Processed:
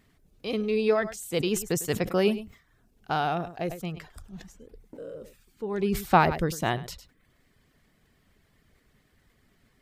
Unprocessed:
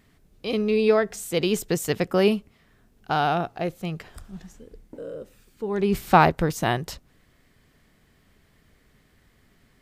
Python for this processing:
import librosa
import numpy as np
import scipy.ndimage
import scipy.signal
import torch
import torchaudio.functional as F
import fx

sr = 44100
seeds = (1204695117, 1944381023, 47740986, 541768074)

y = fx.dereverb_blind(x, sr, rt60_s=0.51)
y = y + 10.0 ** (-19.0 / 20.0) * np.pad(y, (int(102 * sr / 1000.0), 0))[:len(y)]
y = fx.sustainer(y, sr, db_per_s=130.0)
y = F.gain(torch.from_numpy(y), -3.5).numpy()